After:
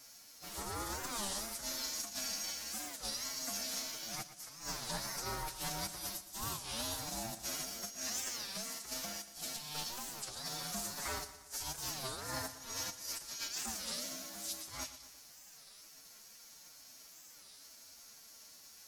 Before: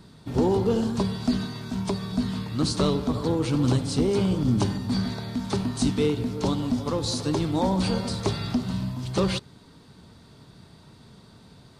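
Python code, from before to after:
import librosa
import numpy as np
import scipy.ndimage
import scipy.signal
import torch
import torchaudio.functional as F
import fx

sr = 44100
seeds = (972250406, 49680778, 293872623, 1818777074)

p1 = np.diff(x, prepend=0.0)
p2 = fx.over_compress(p1, sr, threshold_db=-46.0, ratio=-0.5)
p3 = fx.formant_shift(p2, sr, semitones=5)
p4 = p3 * np.sin(2.0 * np.pi * 450.0 * np.arange(len(p3)) / sr)
p5 = fx.stretch_vocoder(p4, sr, factor=1.6)
p6 = p5 + fx.echo_feedback(p5, sr, ms=118, feedback_pct=53, wet_db=-13.5, dry=0)
p7 = fx.record_warp(p6, sr, rpm=33.33, depth_cents=250.0)
y = F.gain(torch.from_numpy(p7), 8.0).numpy()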